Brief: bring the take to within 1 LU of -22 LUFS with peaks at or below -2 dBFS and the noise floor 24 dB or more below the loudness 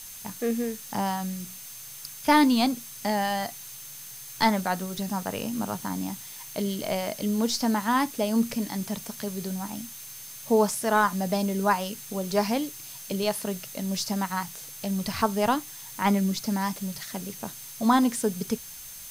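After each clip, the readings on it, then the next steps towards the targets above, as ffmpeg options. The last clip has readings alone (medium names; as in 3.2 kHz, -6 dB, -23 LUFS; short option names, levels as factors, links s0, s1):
steady tone 6.3 kHz; tone level -48 dBFS; noise floor -42 dBFS; noise floor target -52 dBFS; loudness -27.5 LUFS; peak level -8.5 dBFS; loudness target -22.0 LUFS
-> -af "bandreject=f=6300:w=30"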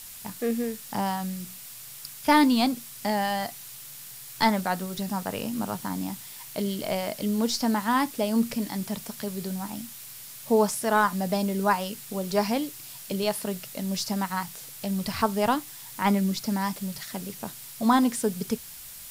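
steady tone not found; noise floor -43 dBFS; noise floor target -52 dBFS
-> -af "afftdn=nr=9:nf=-43"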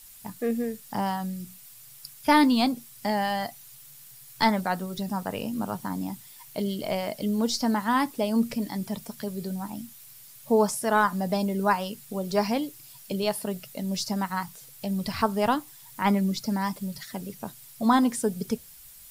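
noise floor -49 dBFS; noise floor target -52 dBFS
-> -af "afftdn=nr=6:nf=-49"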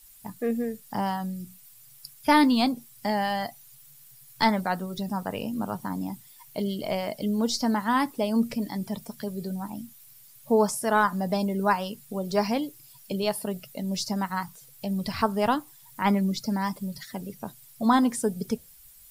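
noise floor -52 dBFS; loudness -27.5 LUFS; peak level -9.0 dBFS; loudness target -22.0 LUFS
-> -af "volume=1.88"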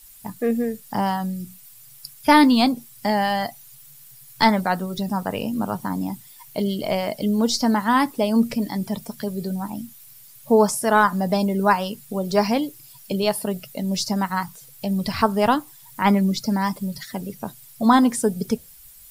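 loudness -22.0 LUFS; peak level -3.5 dBFS; noise floor -47 dBFS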